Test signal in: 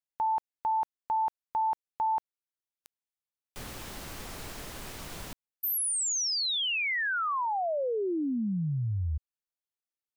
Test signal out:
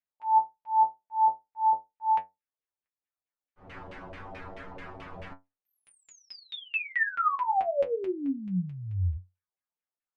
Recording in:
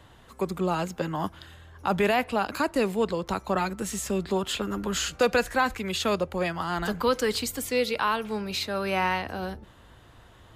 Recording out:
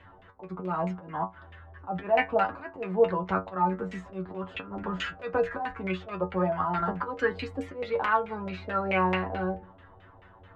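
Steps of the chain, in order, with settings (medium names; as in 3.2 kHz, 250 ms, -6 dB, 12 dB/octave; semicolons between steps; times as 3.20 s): slow attack 198 ms; LFO low-pass saw down 4.6 Hz 570–2500 Hz; inharmonic resonator 91 Hz, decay 0.22 s, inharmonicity 0.002; trim +6 dB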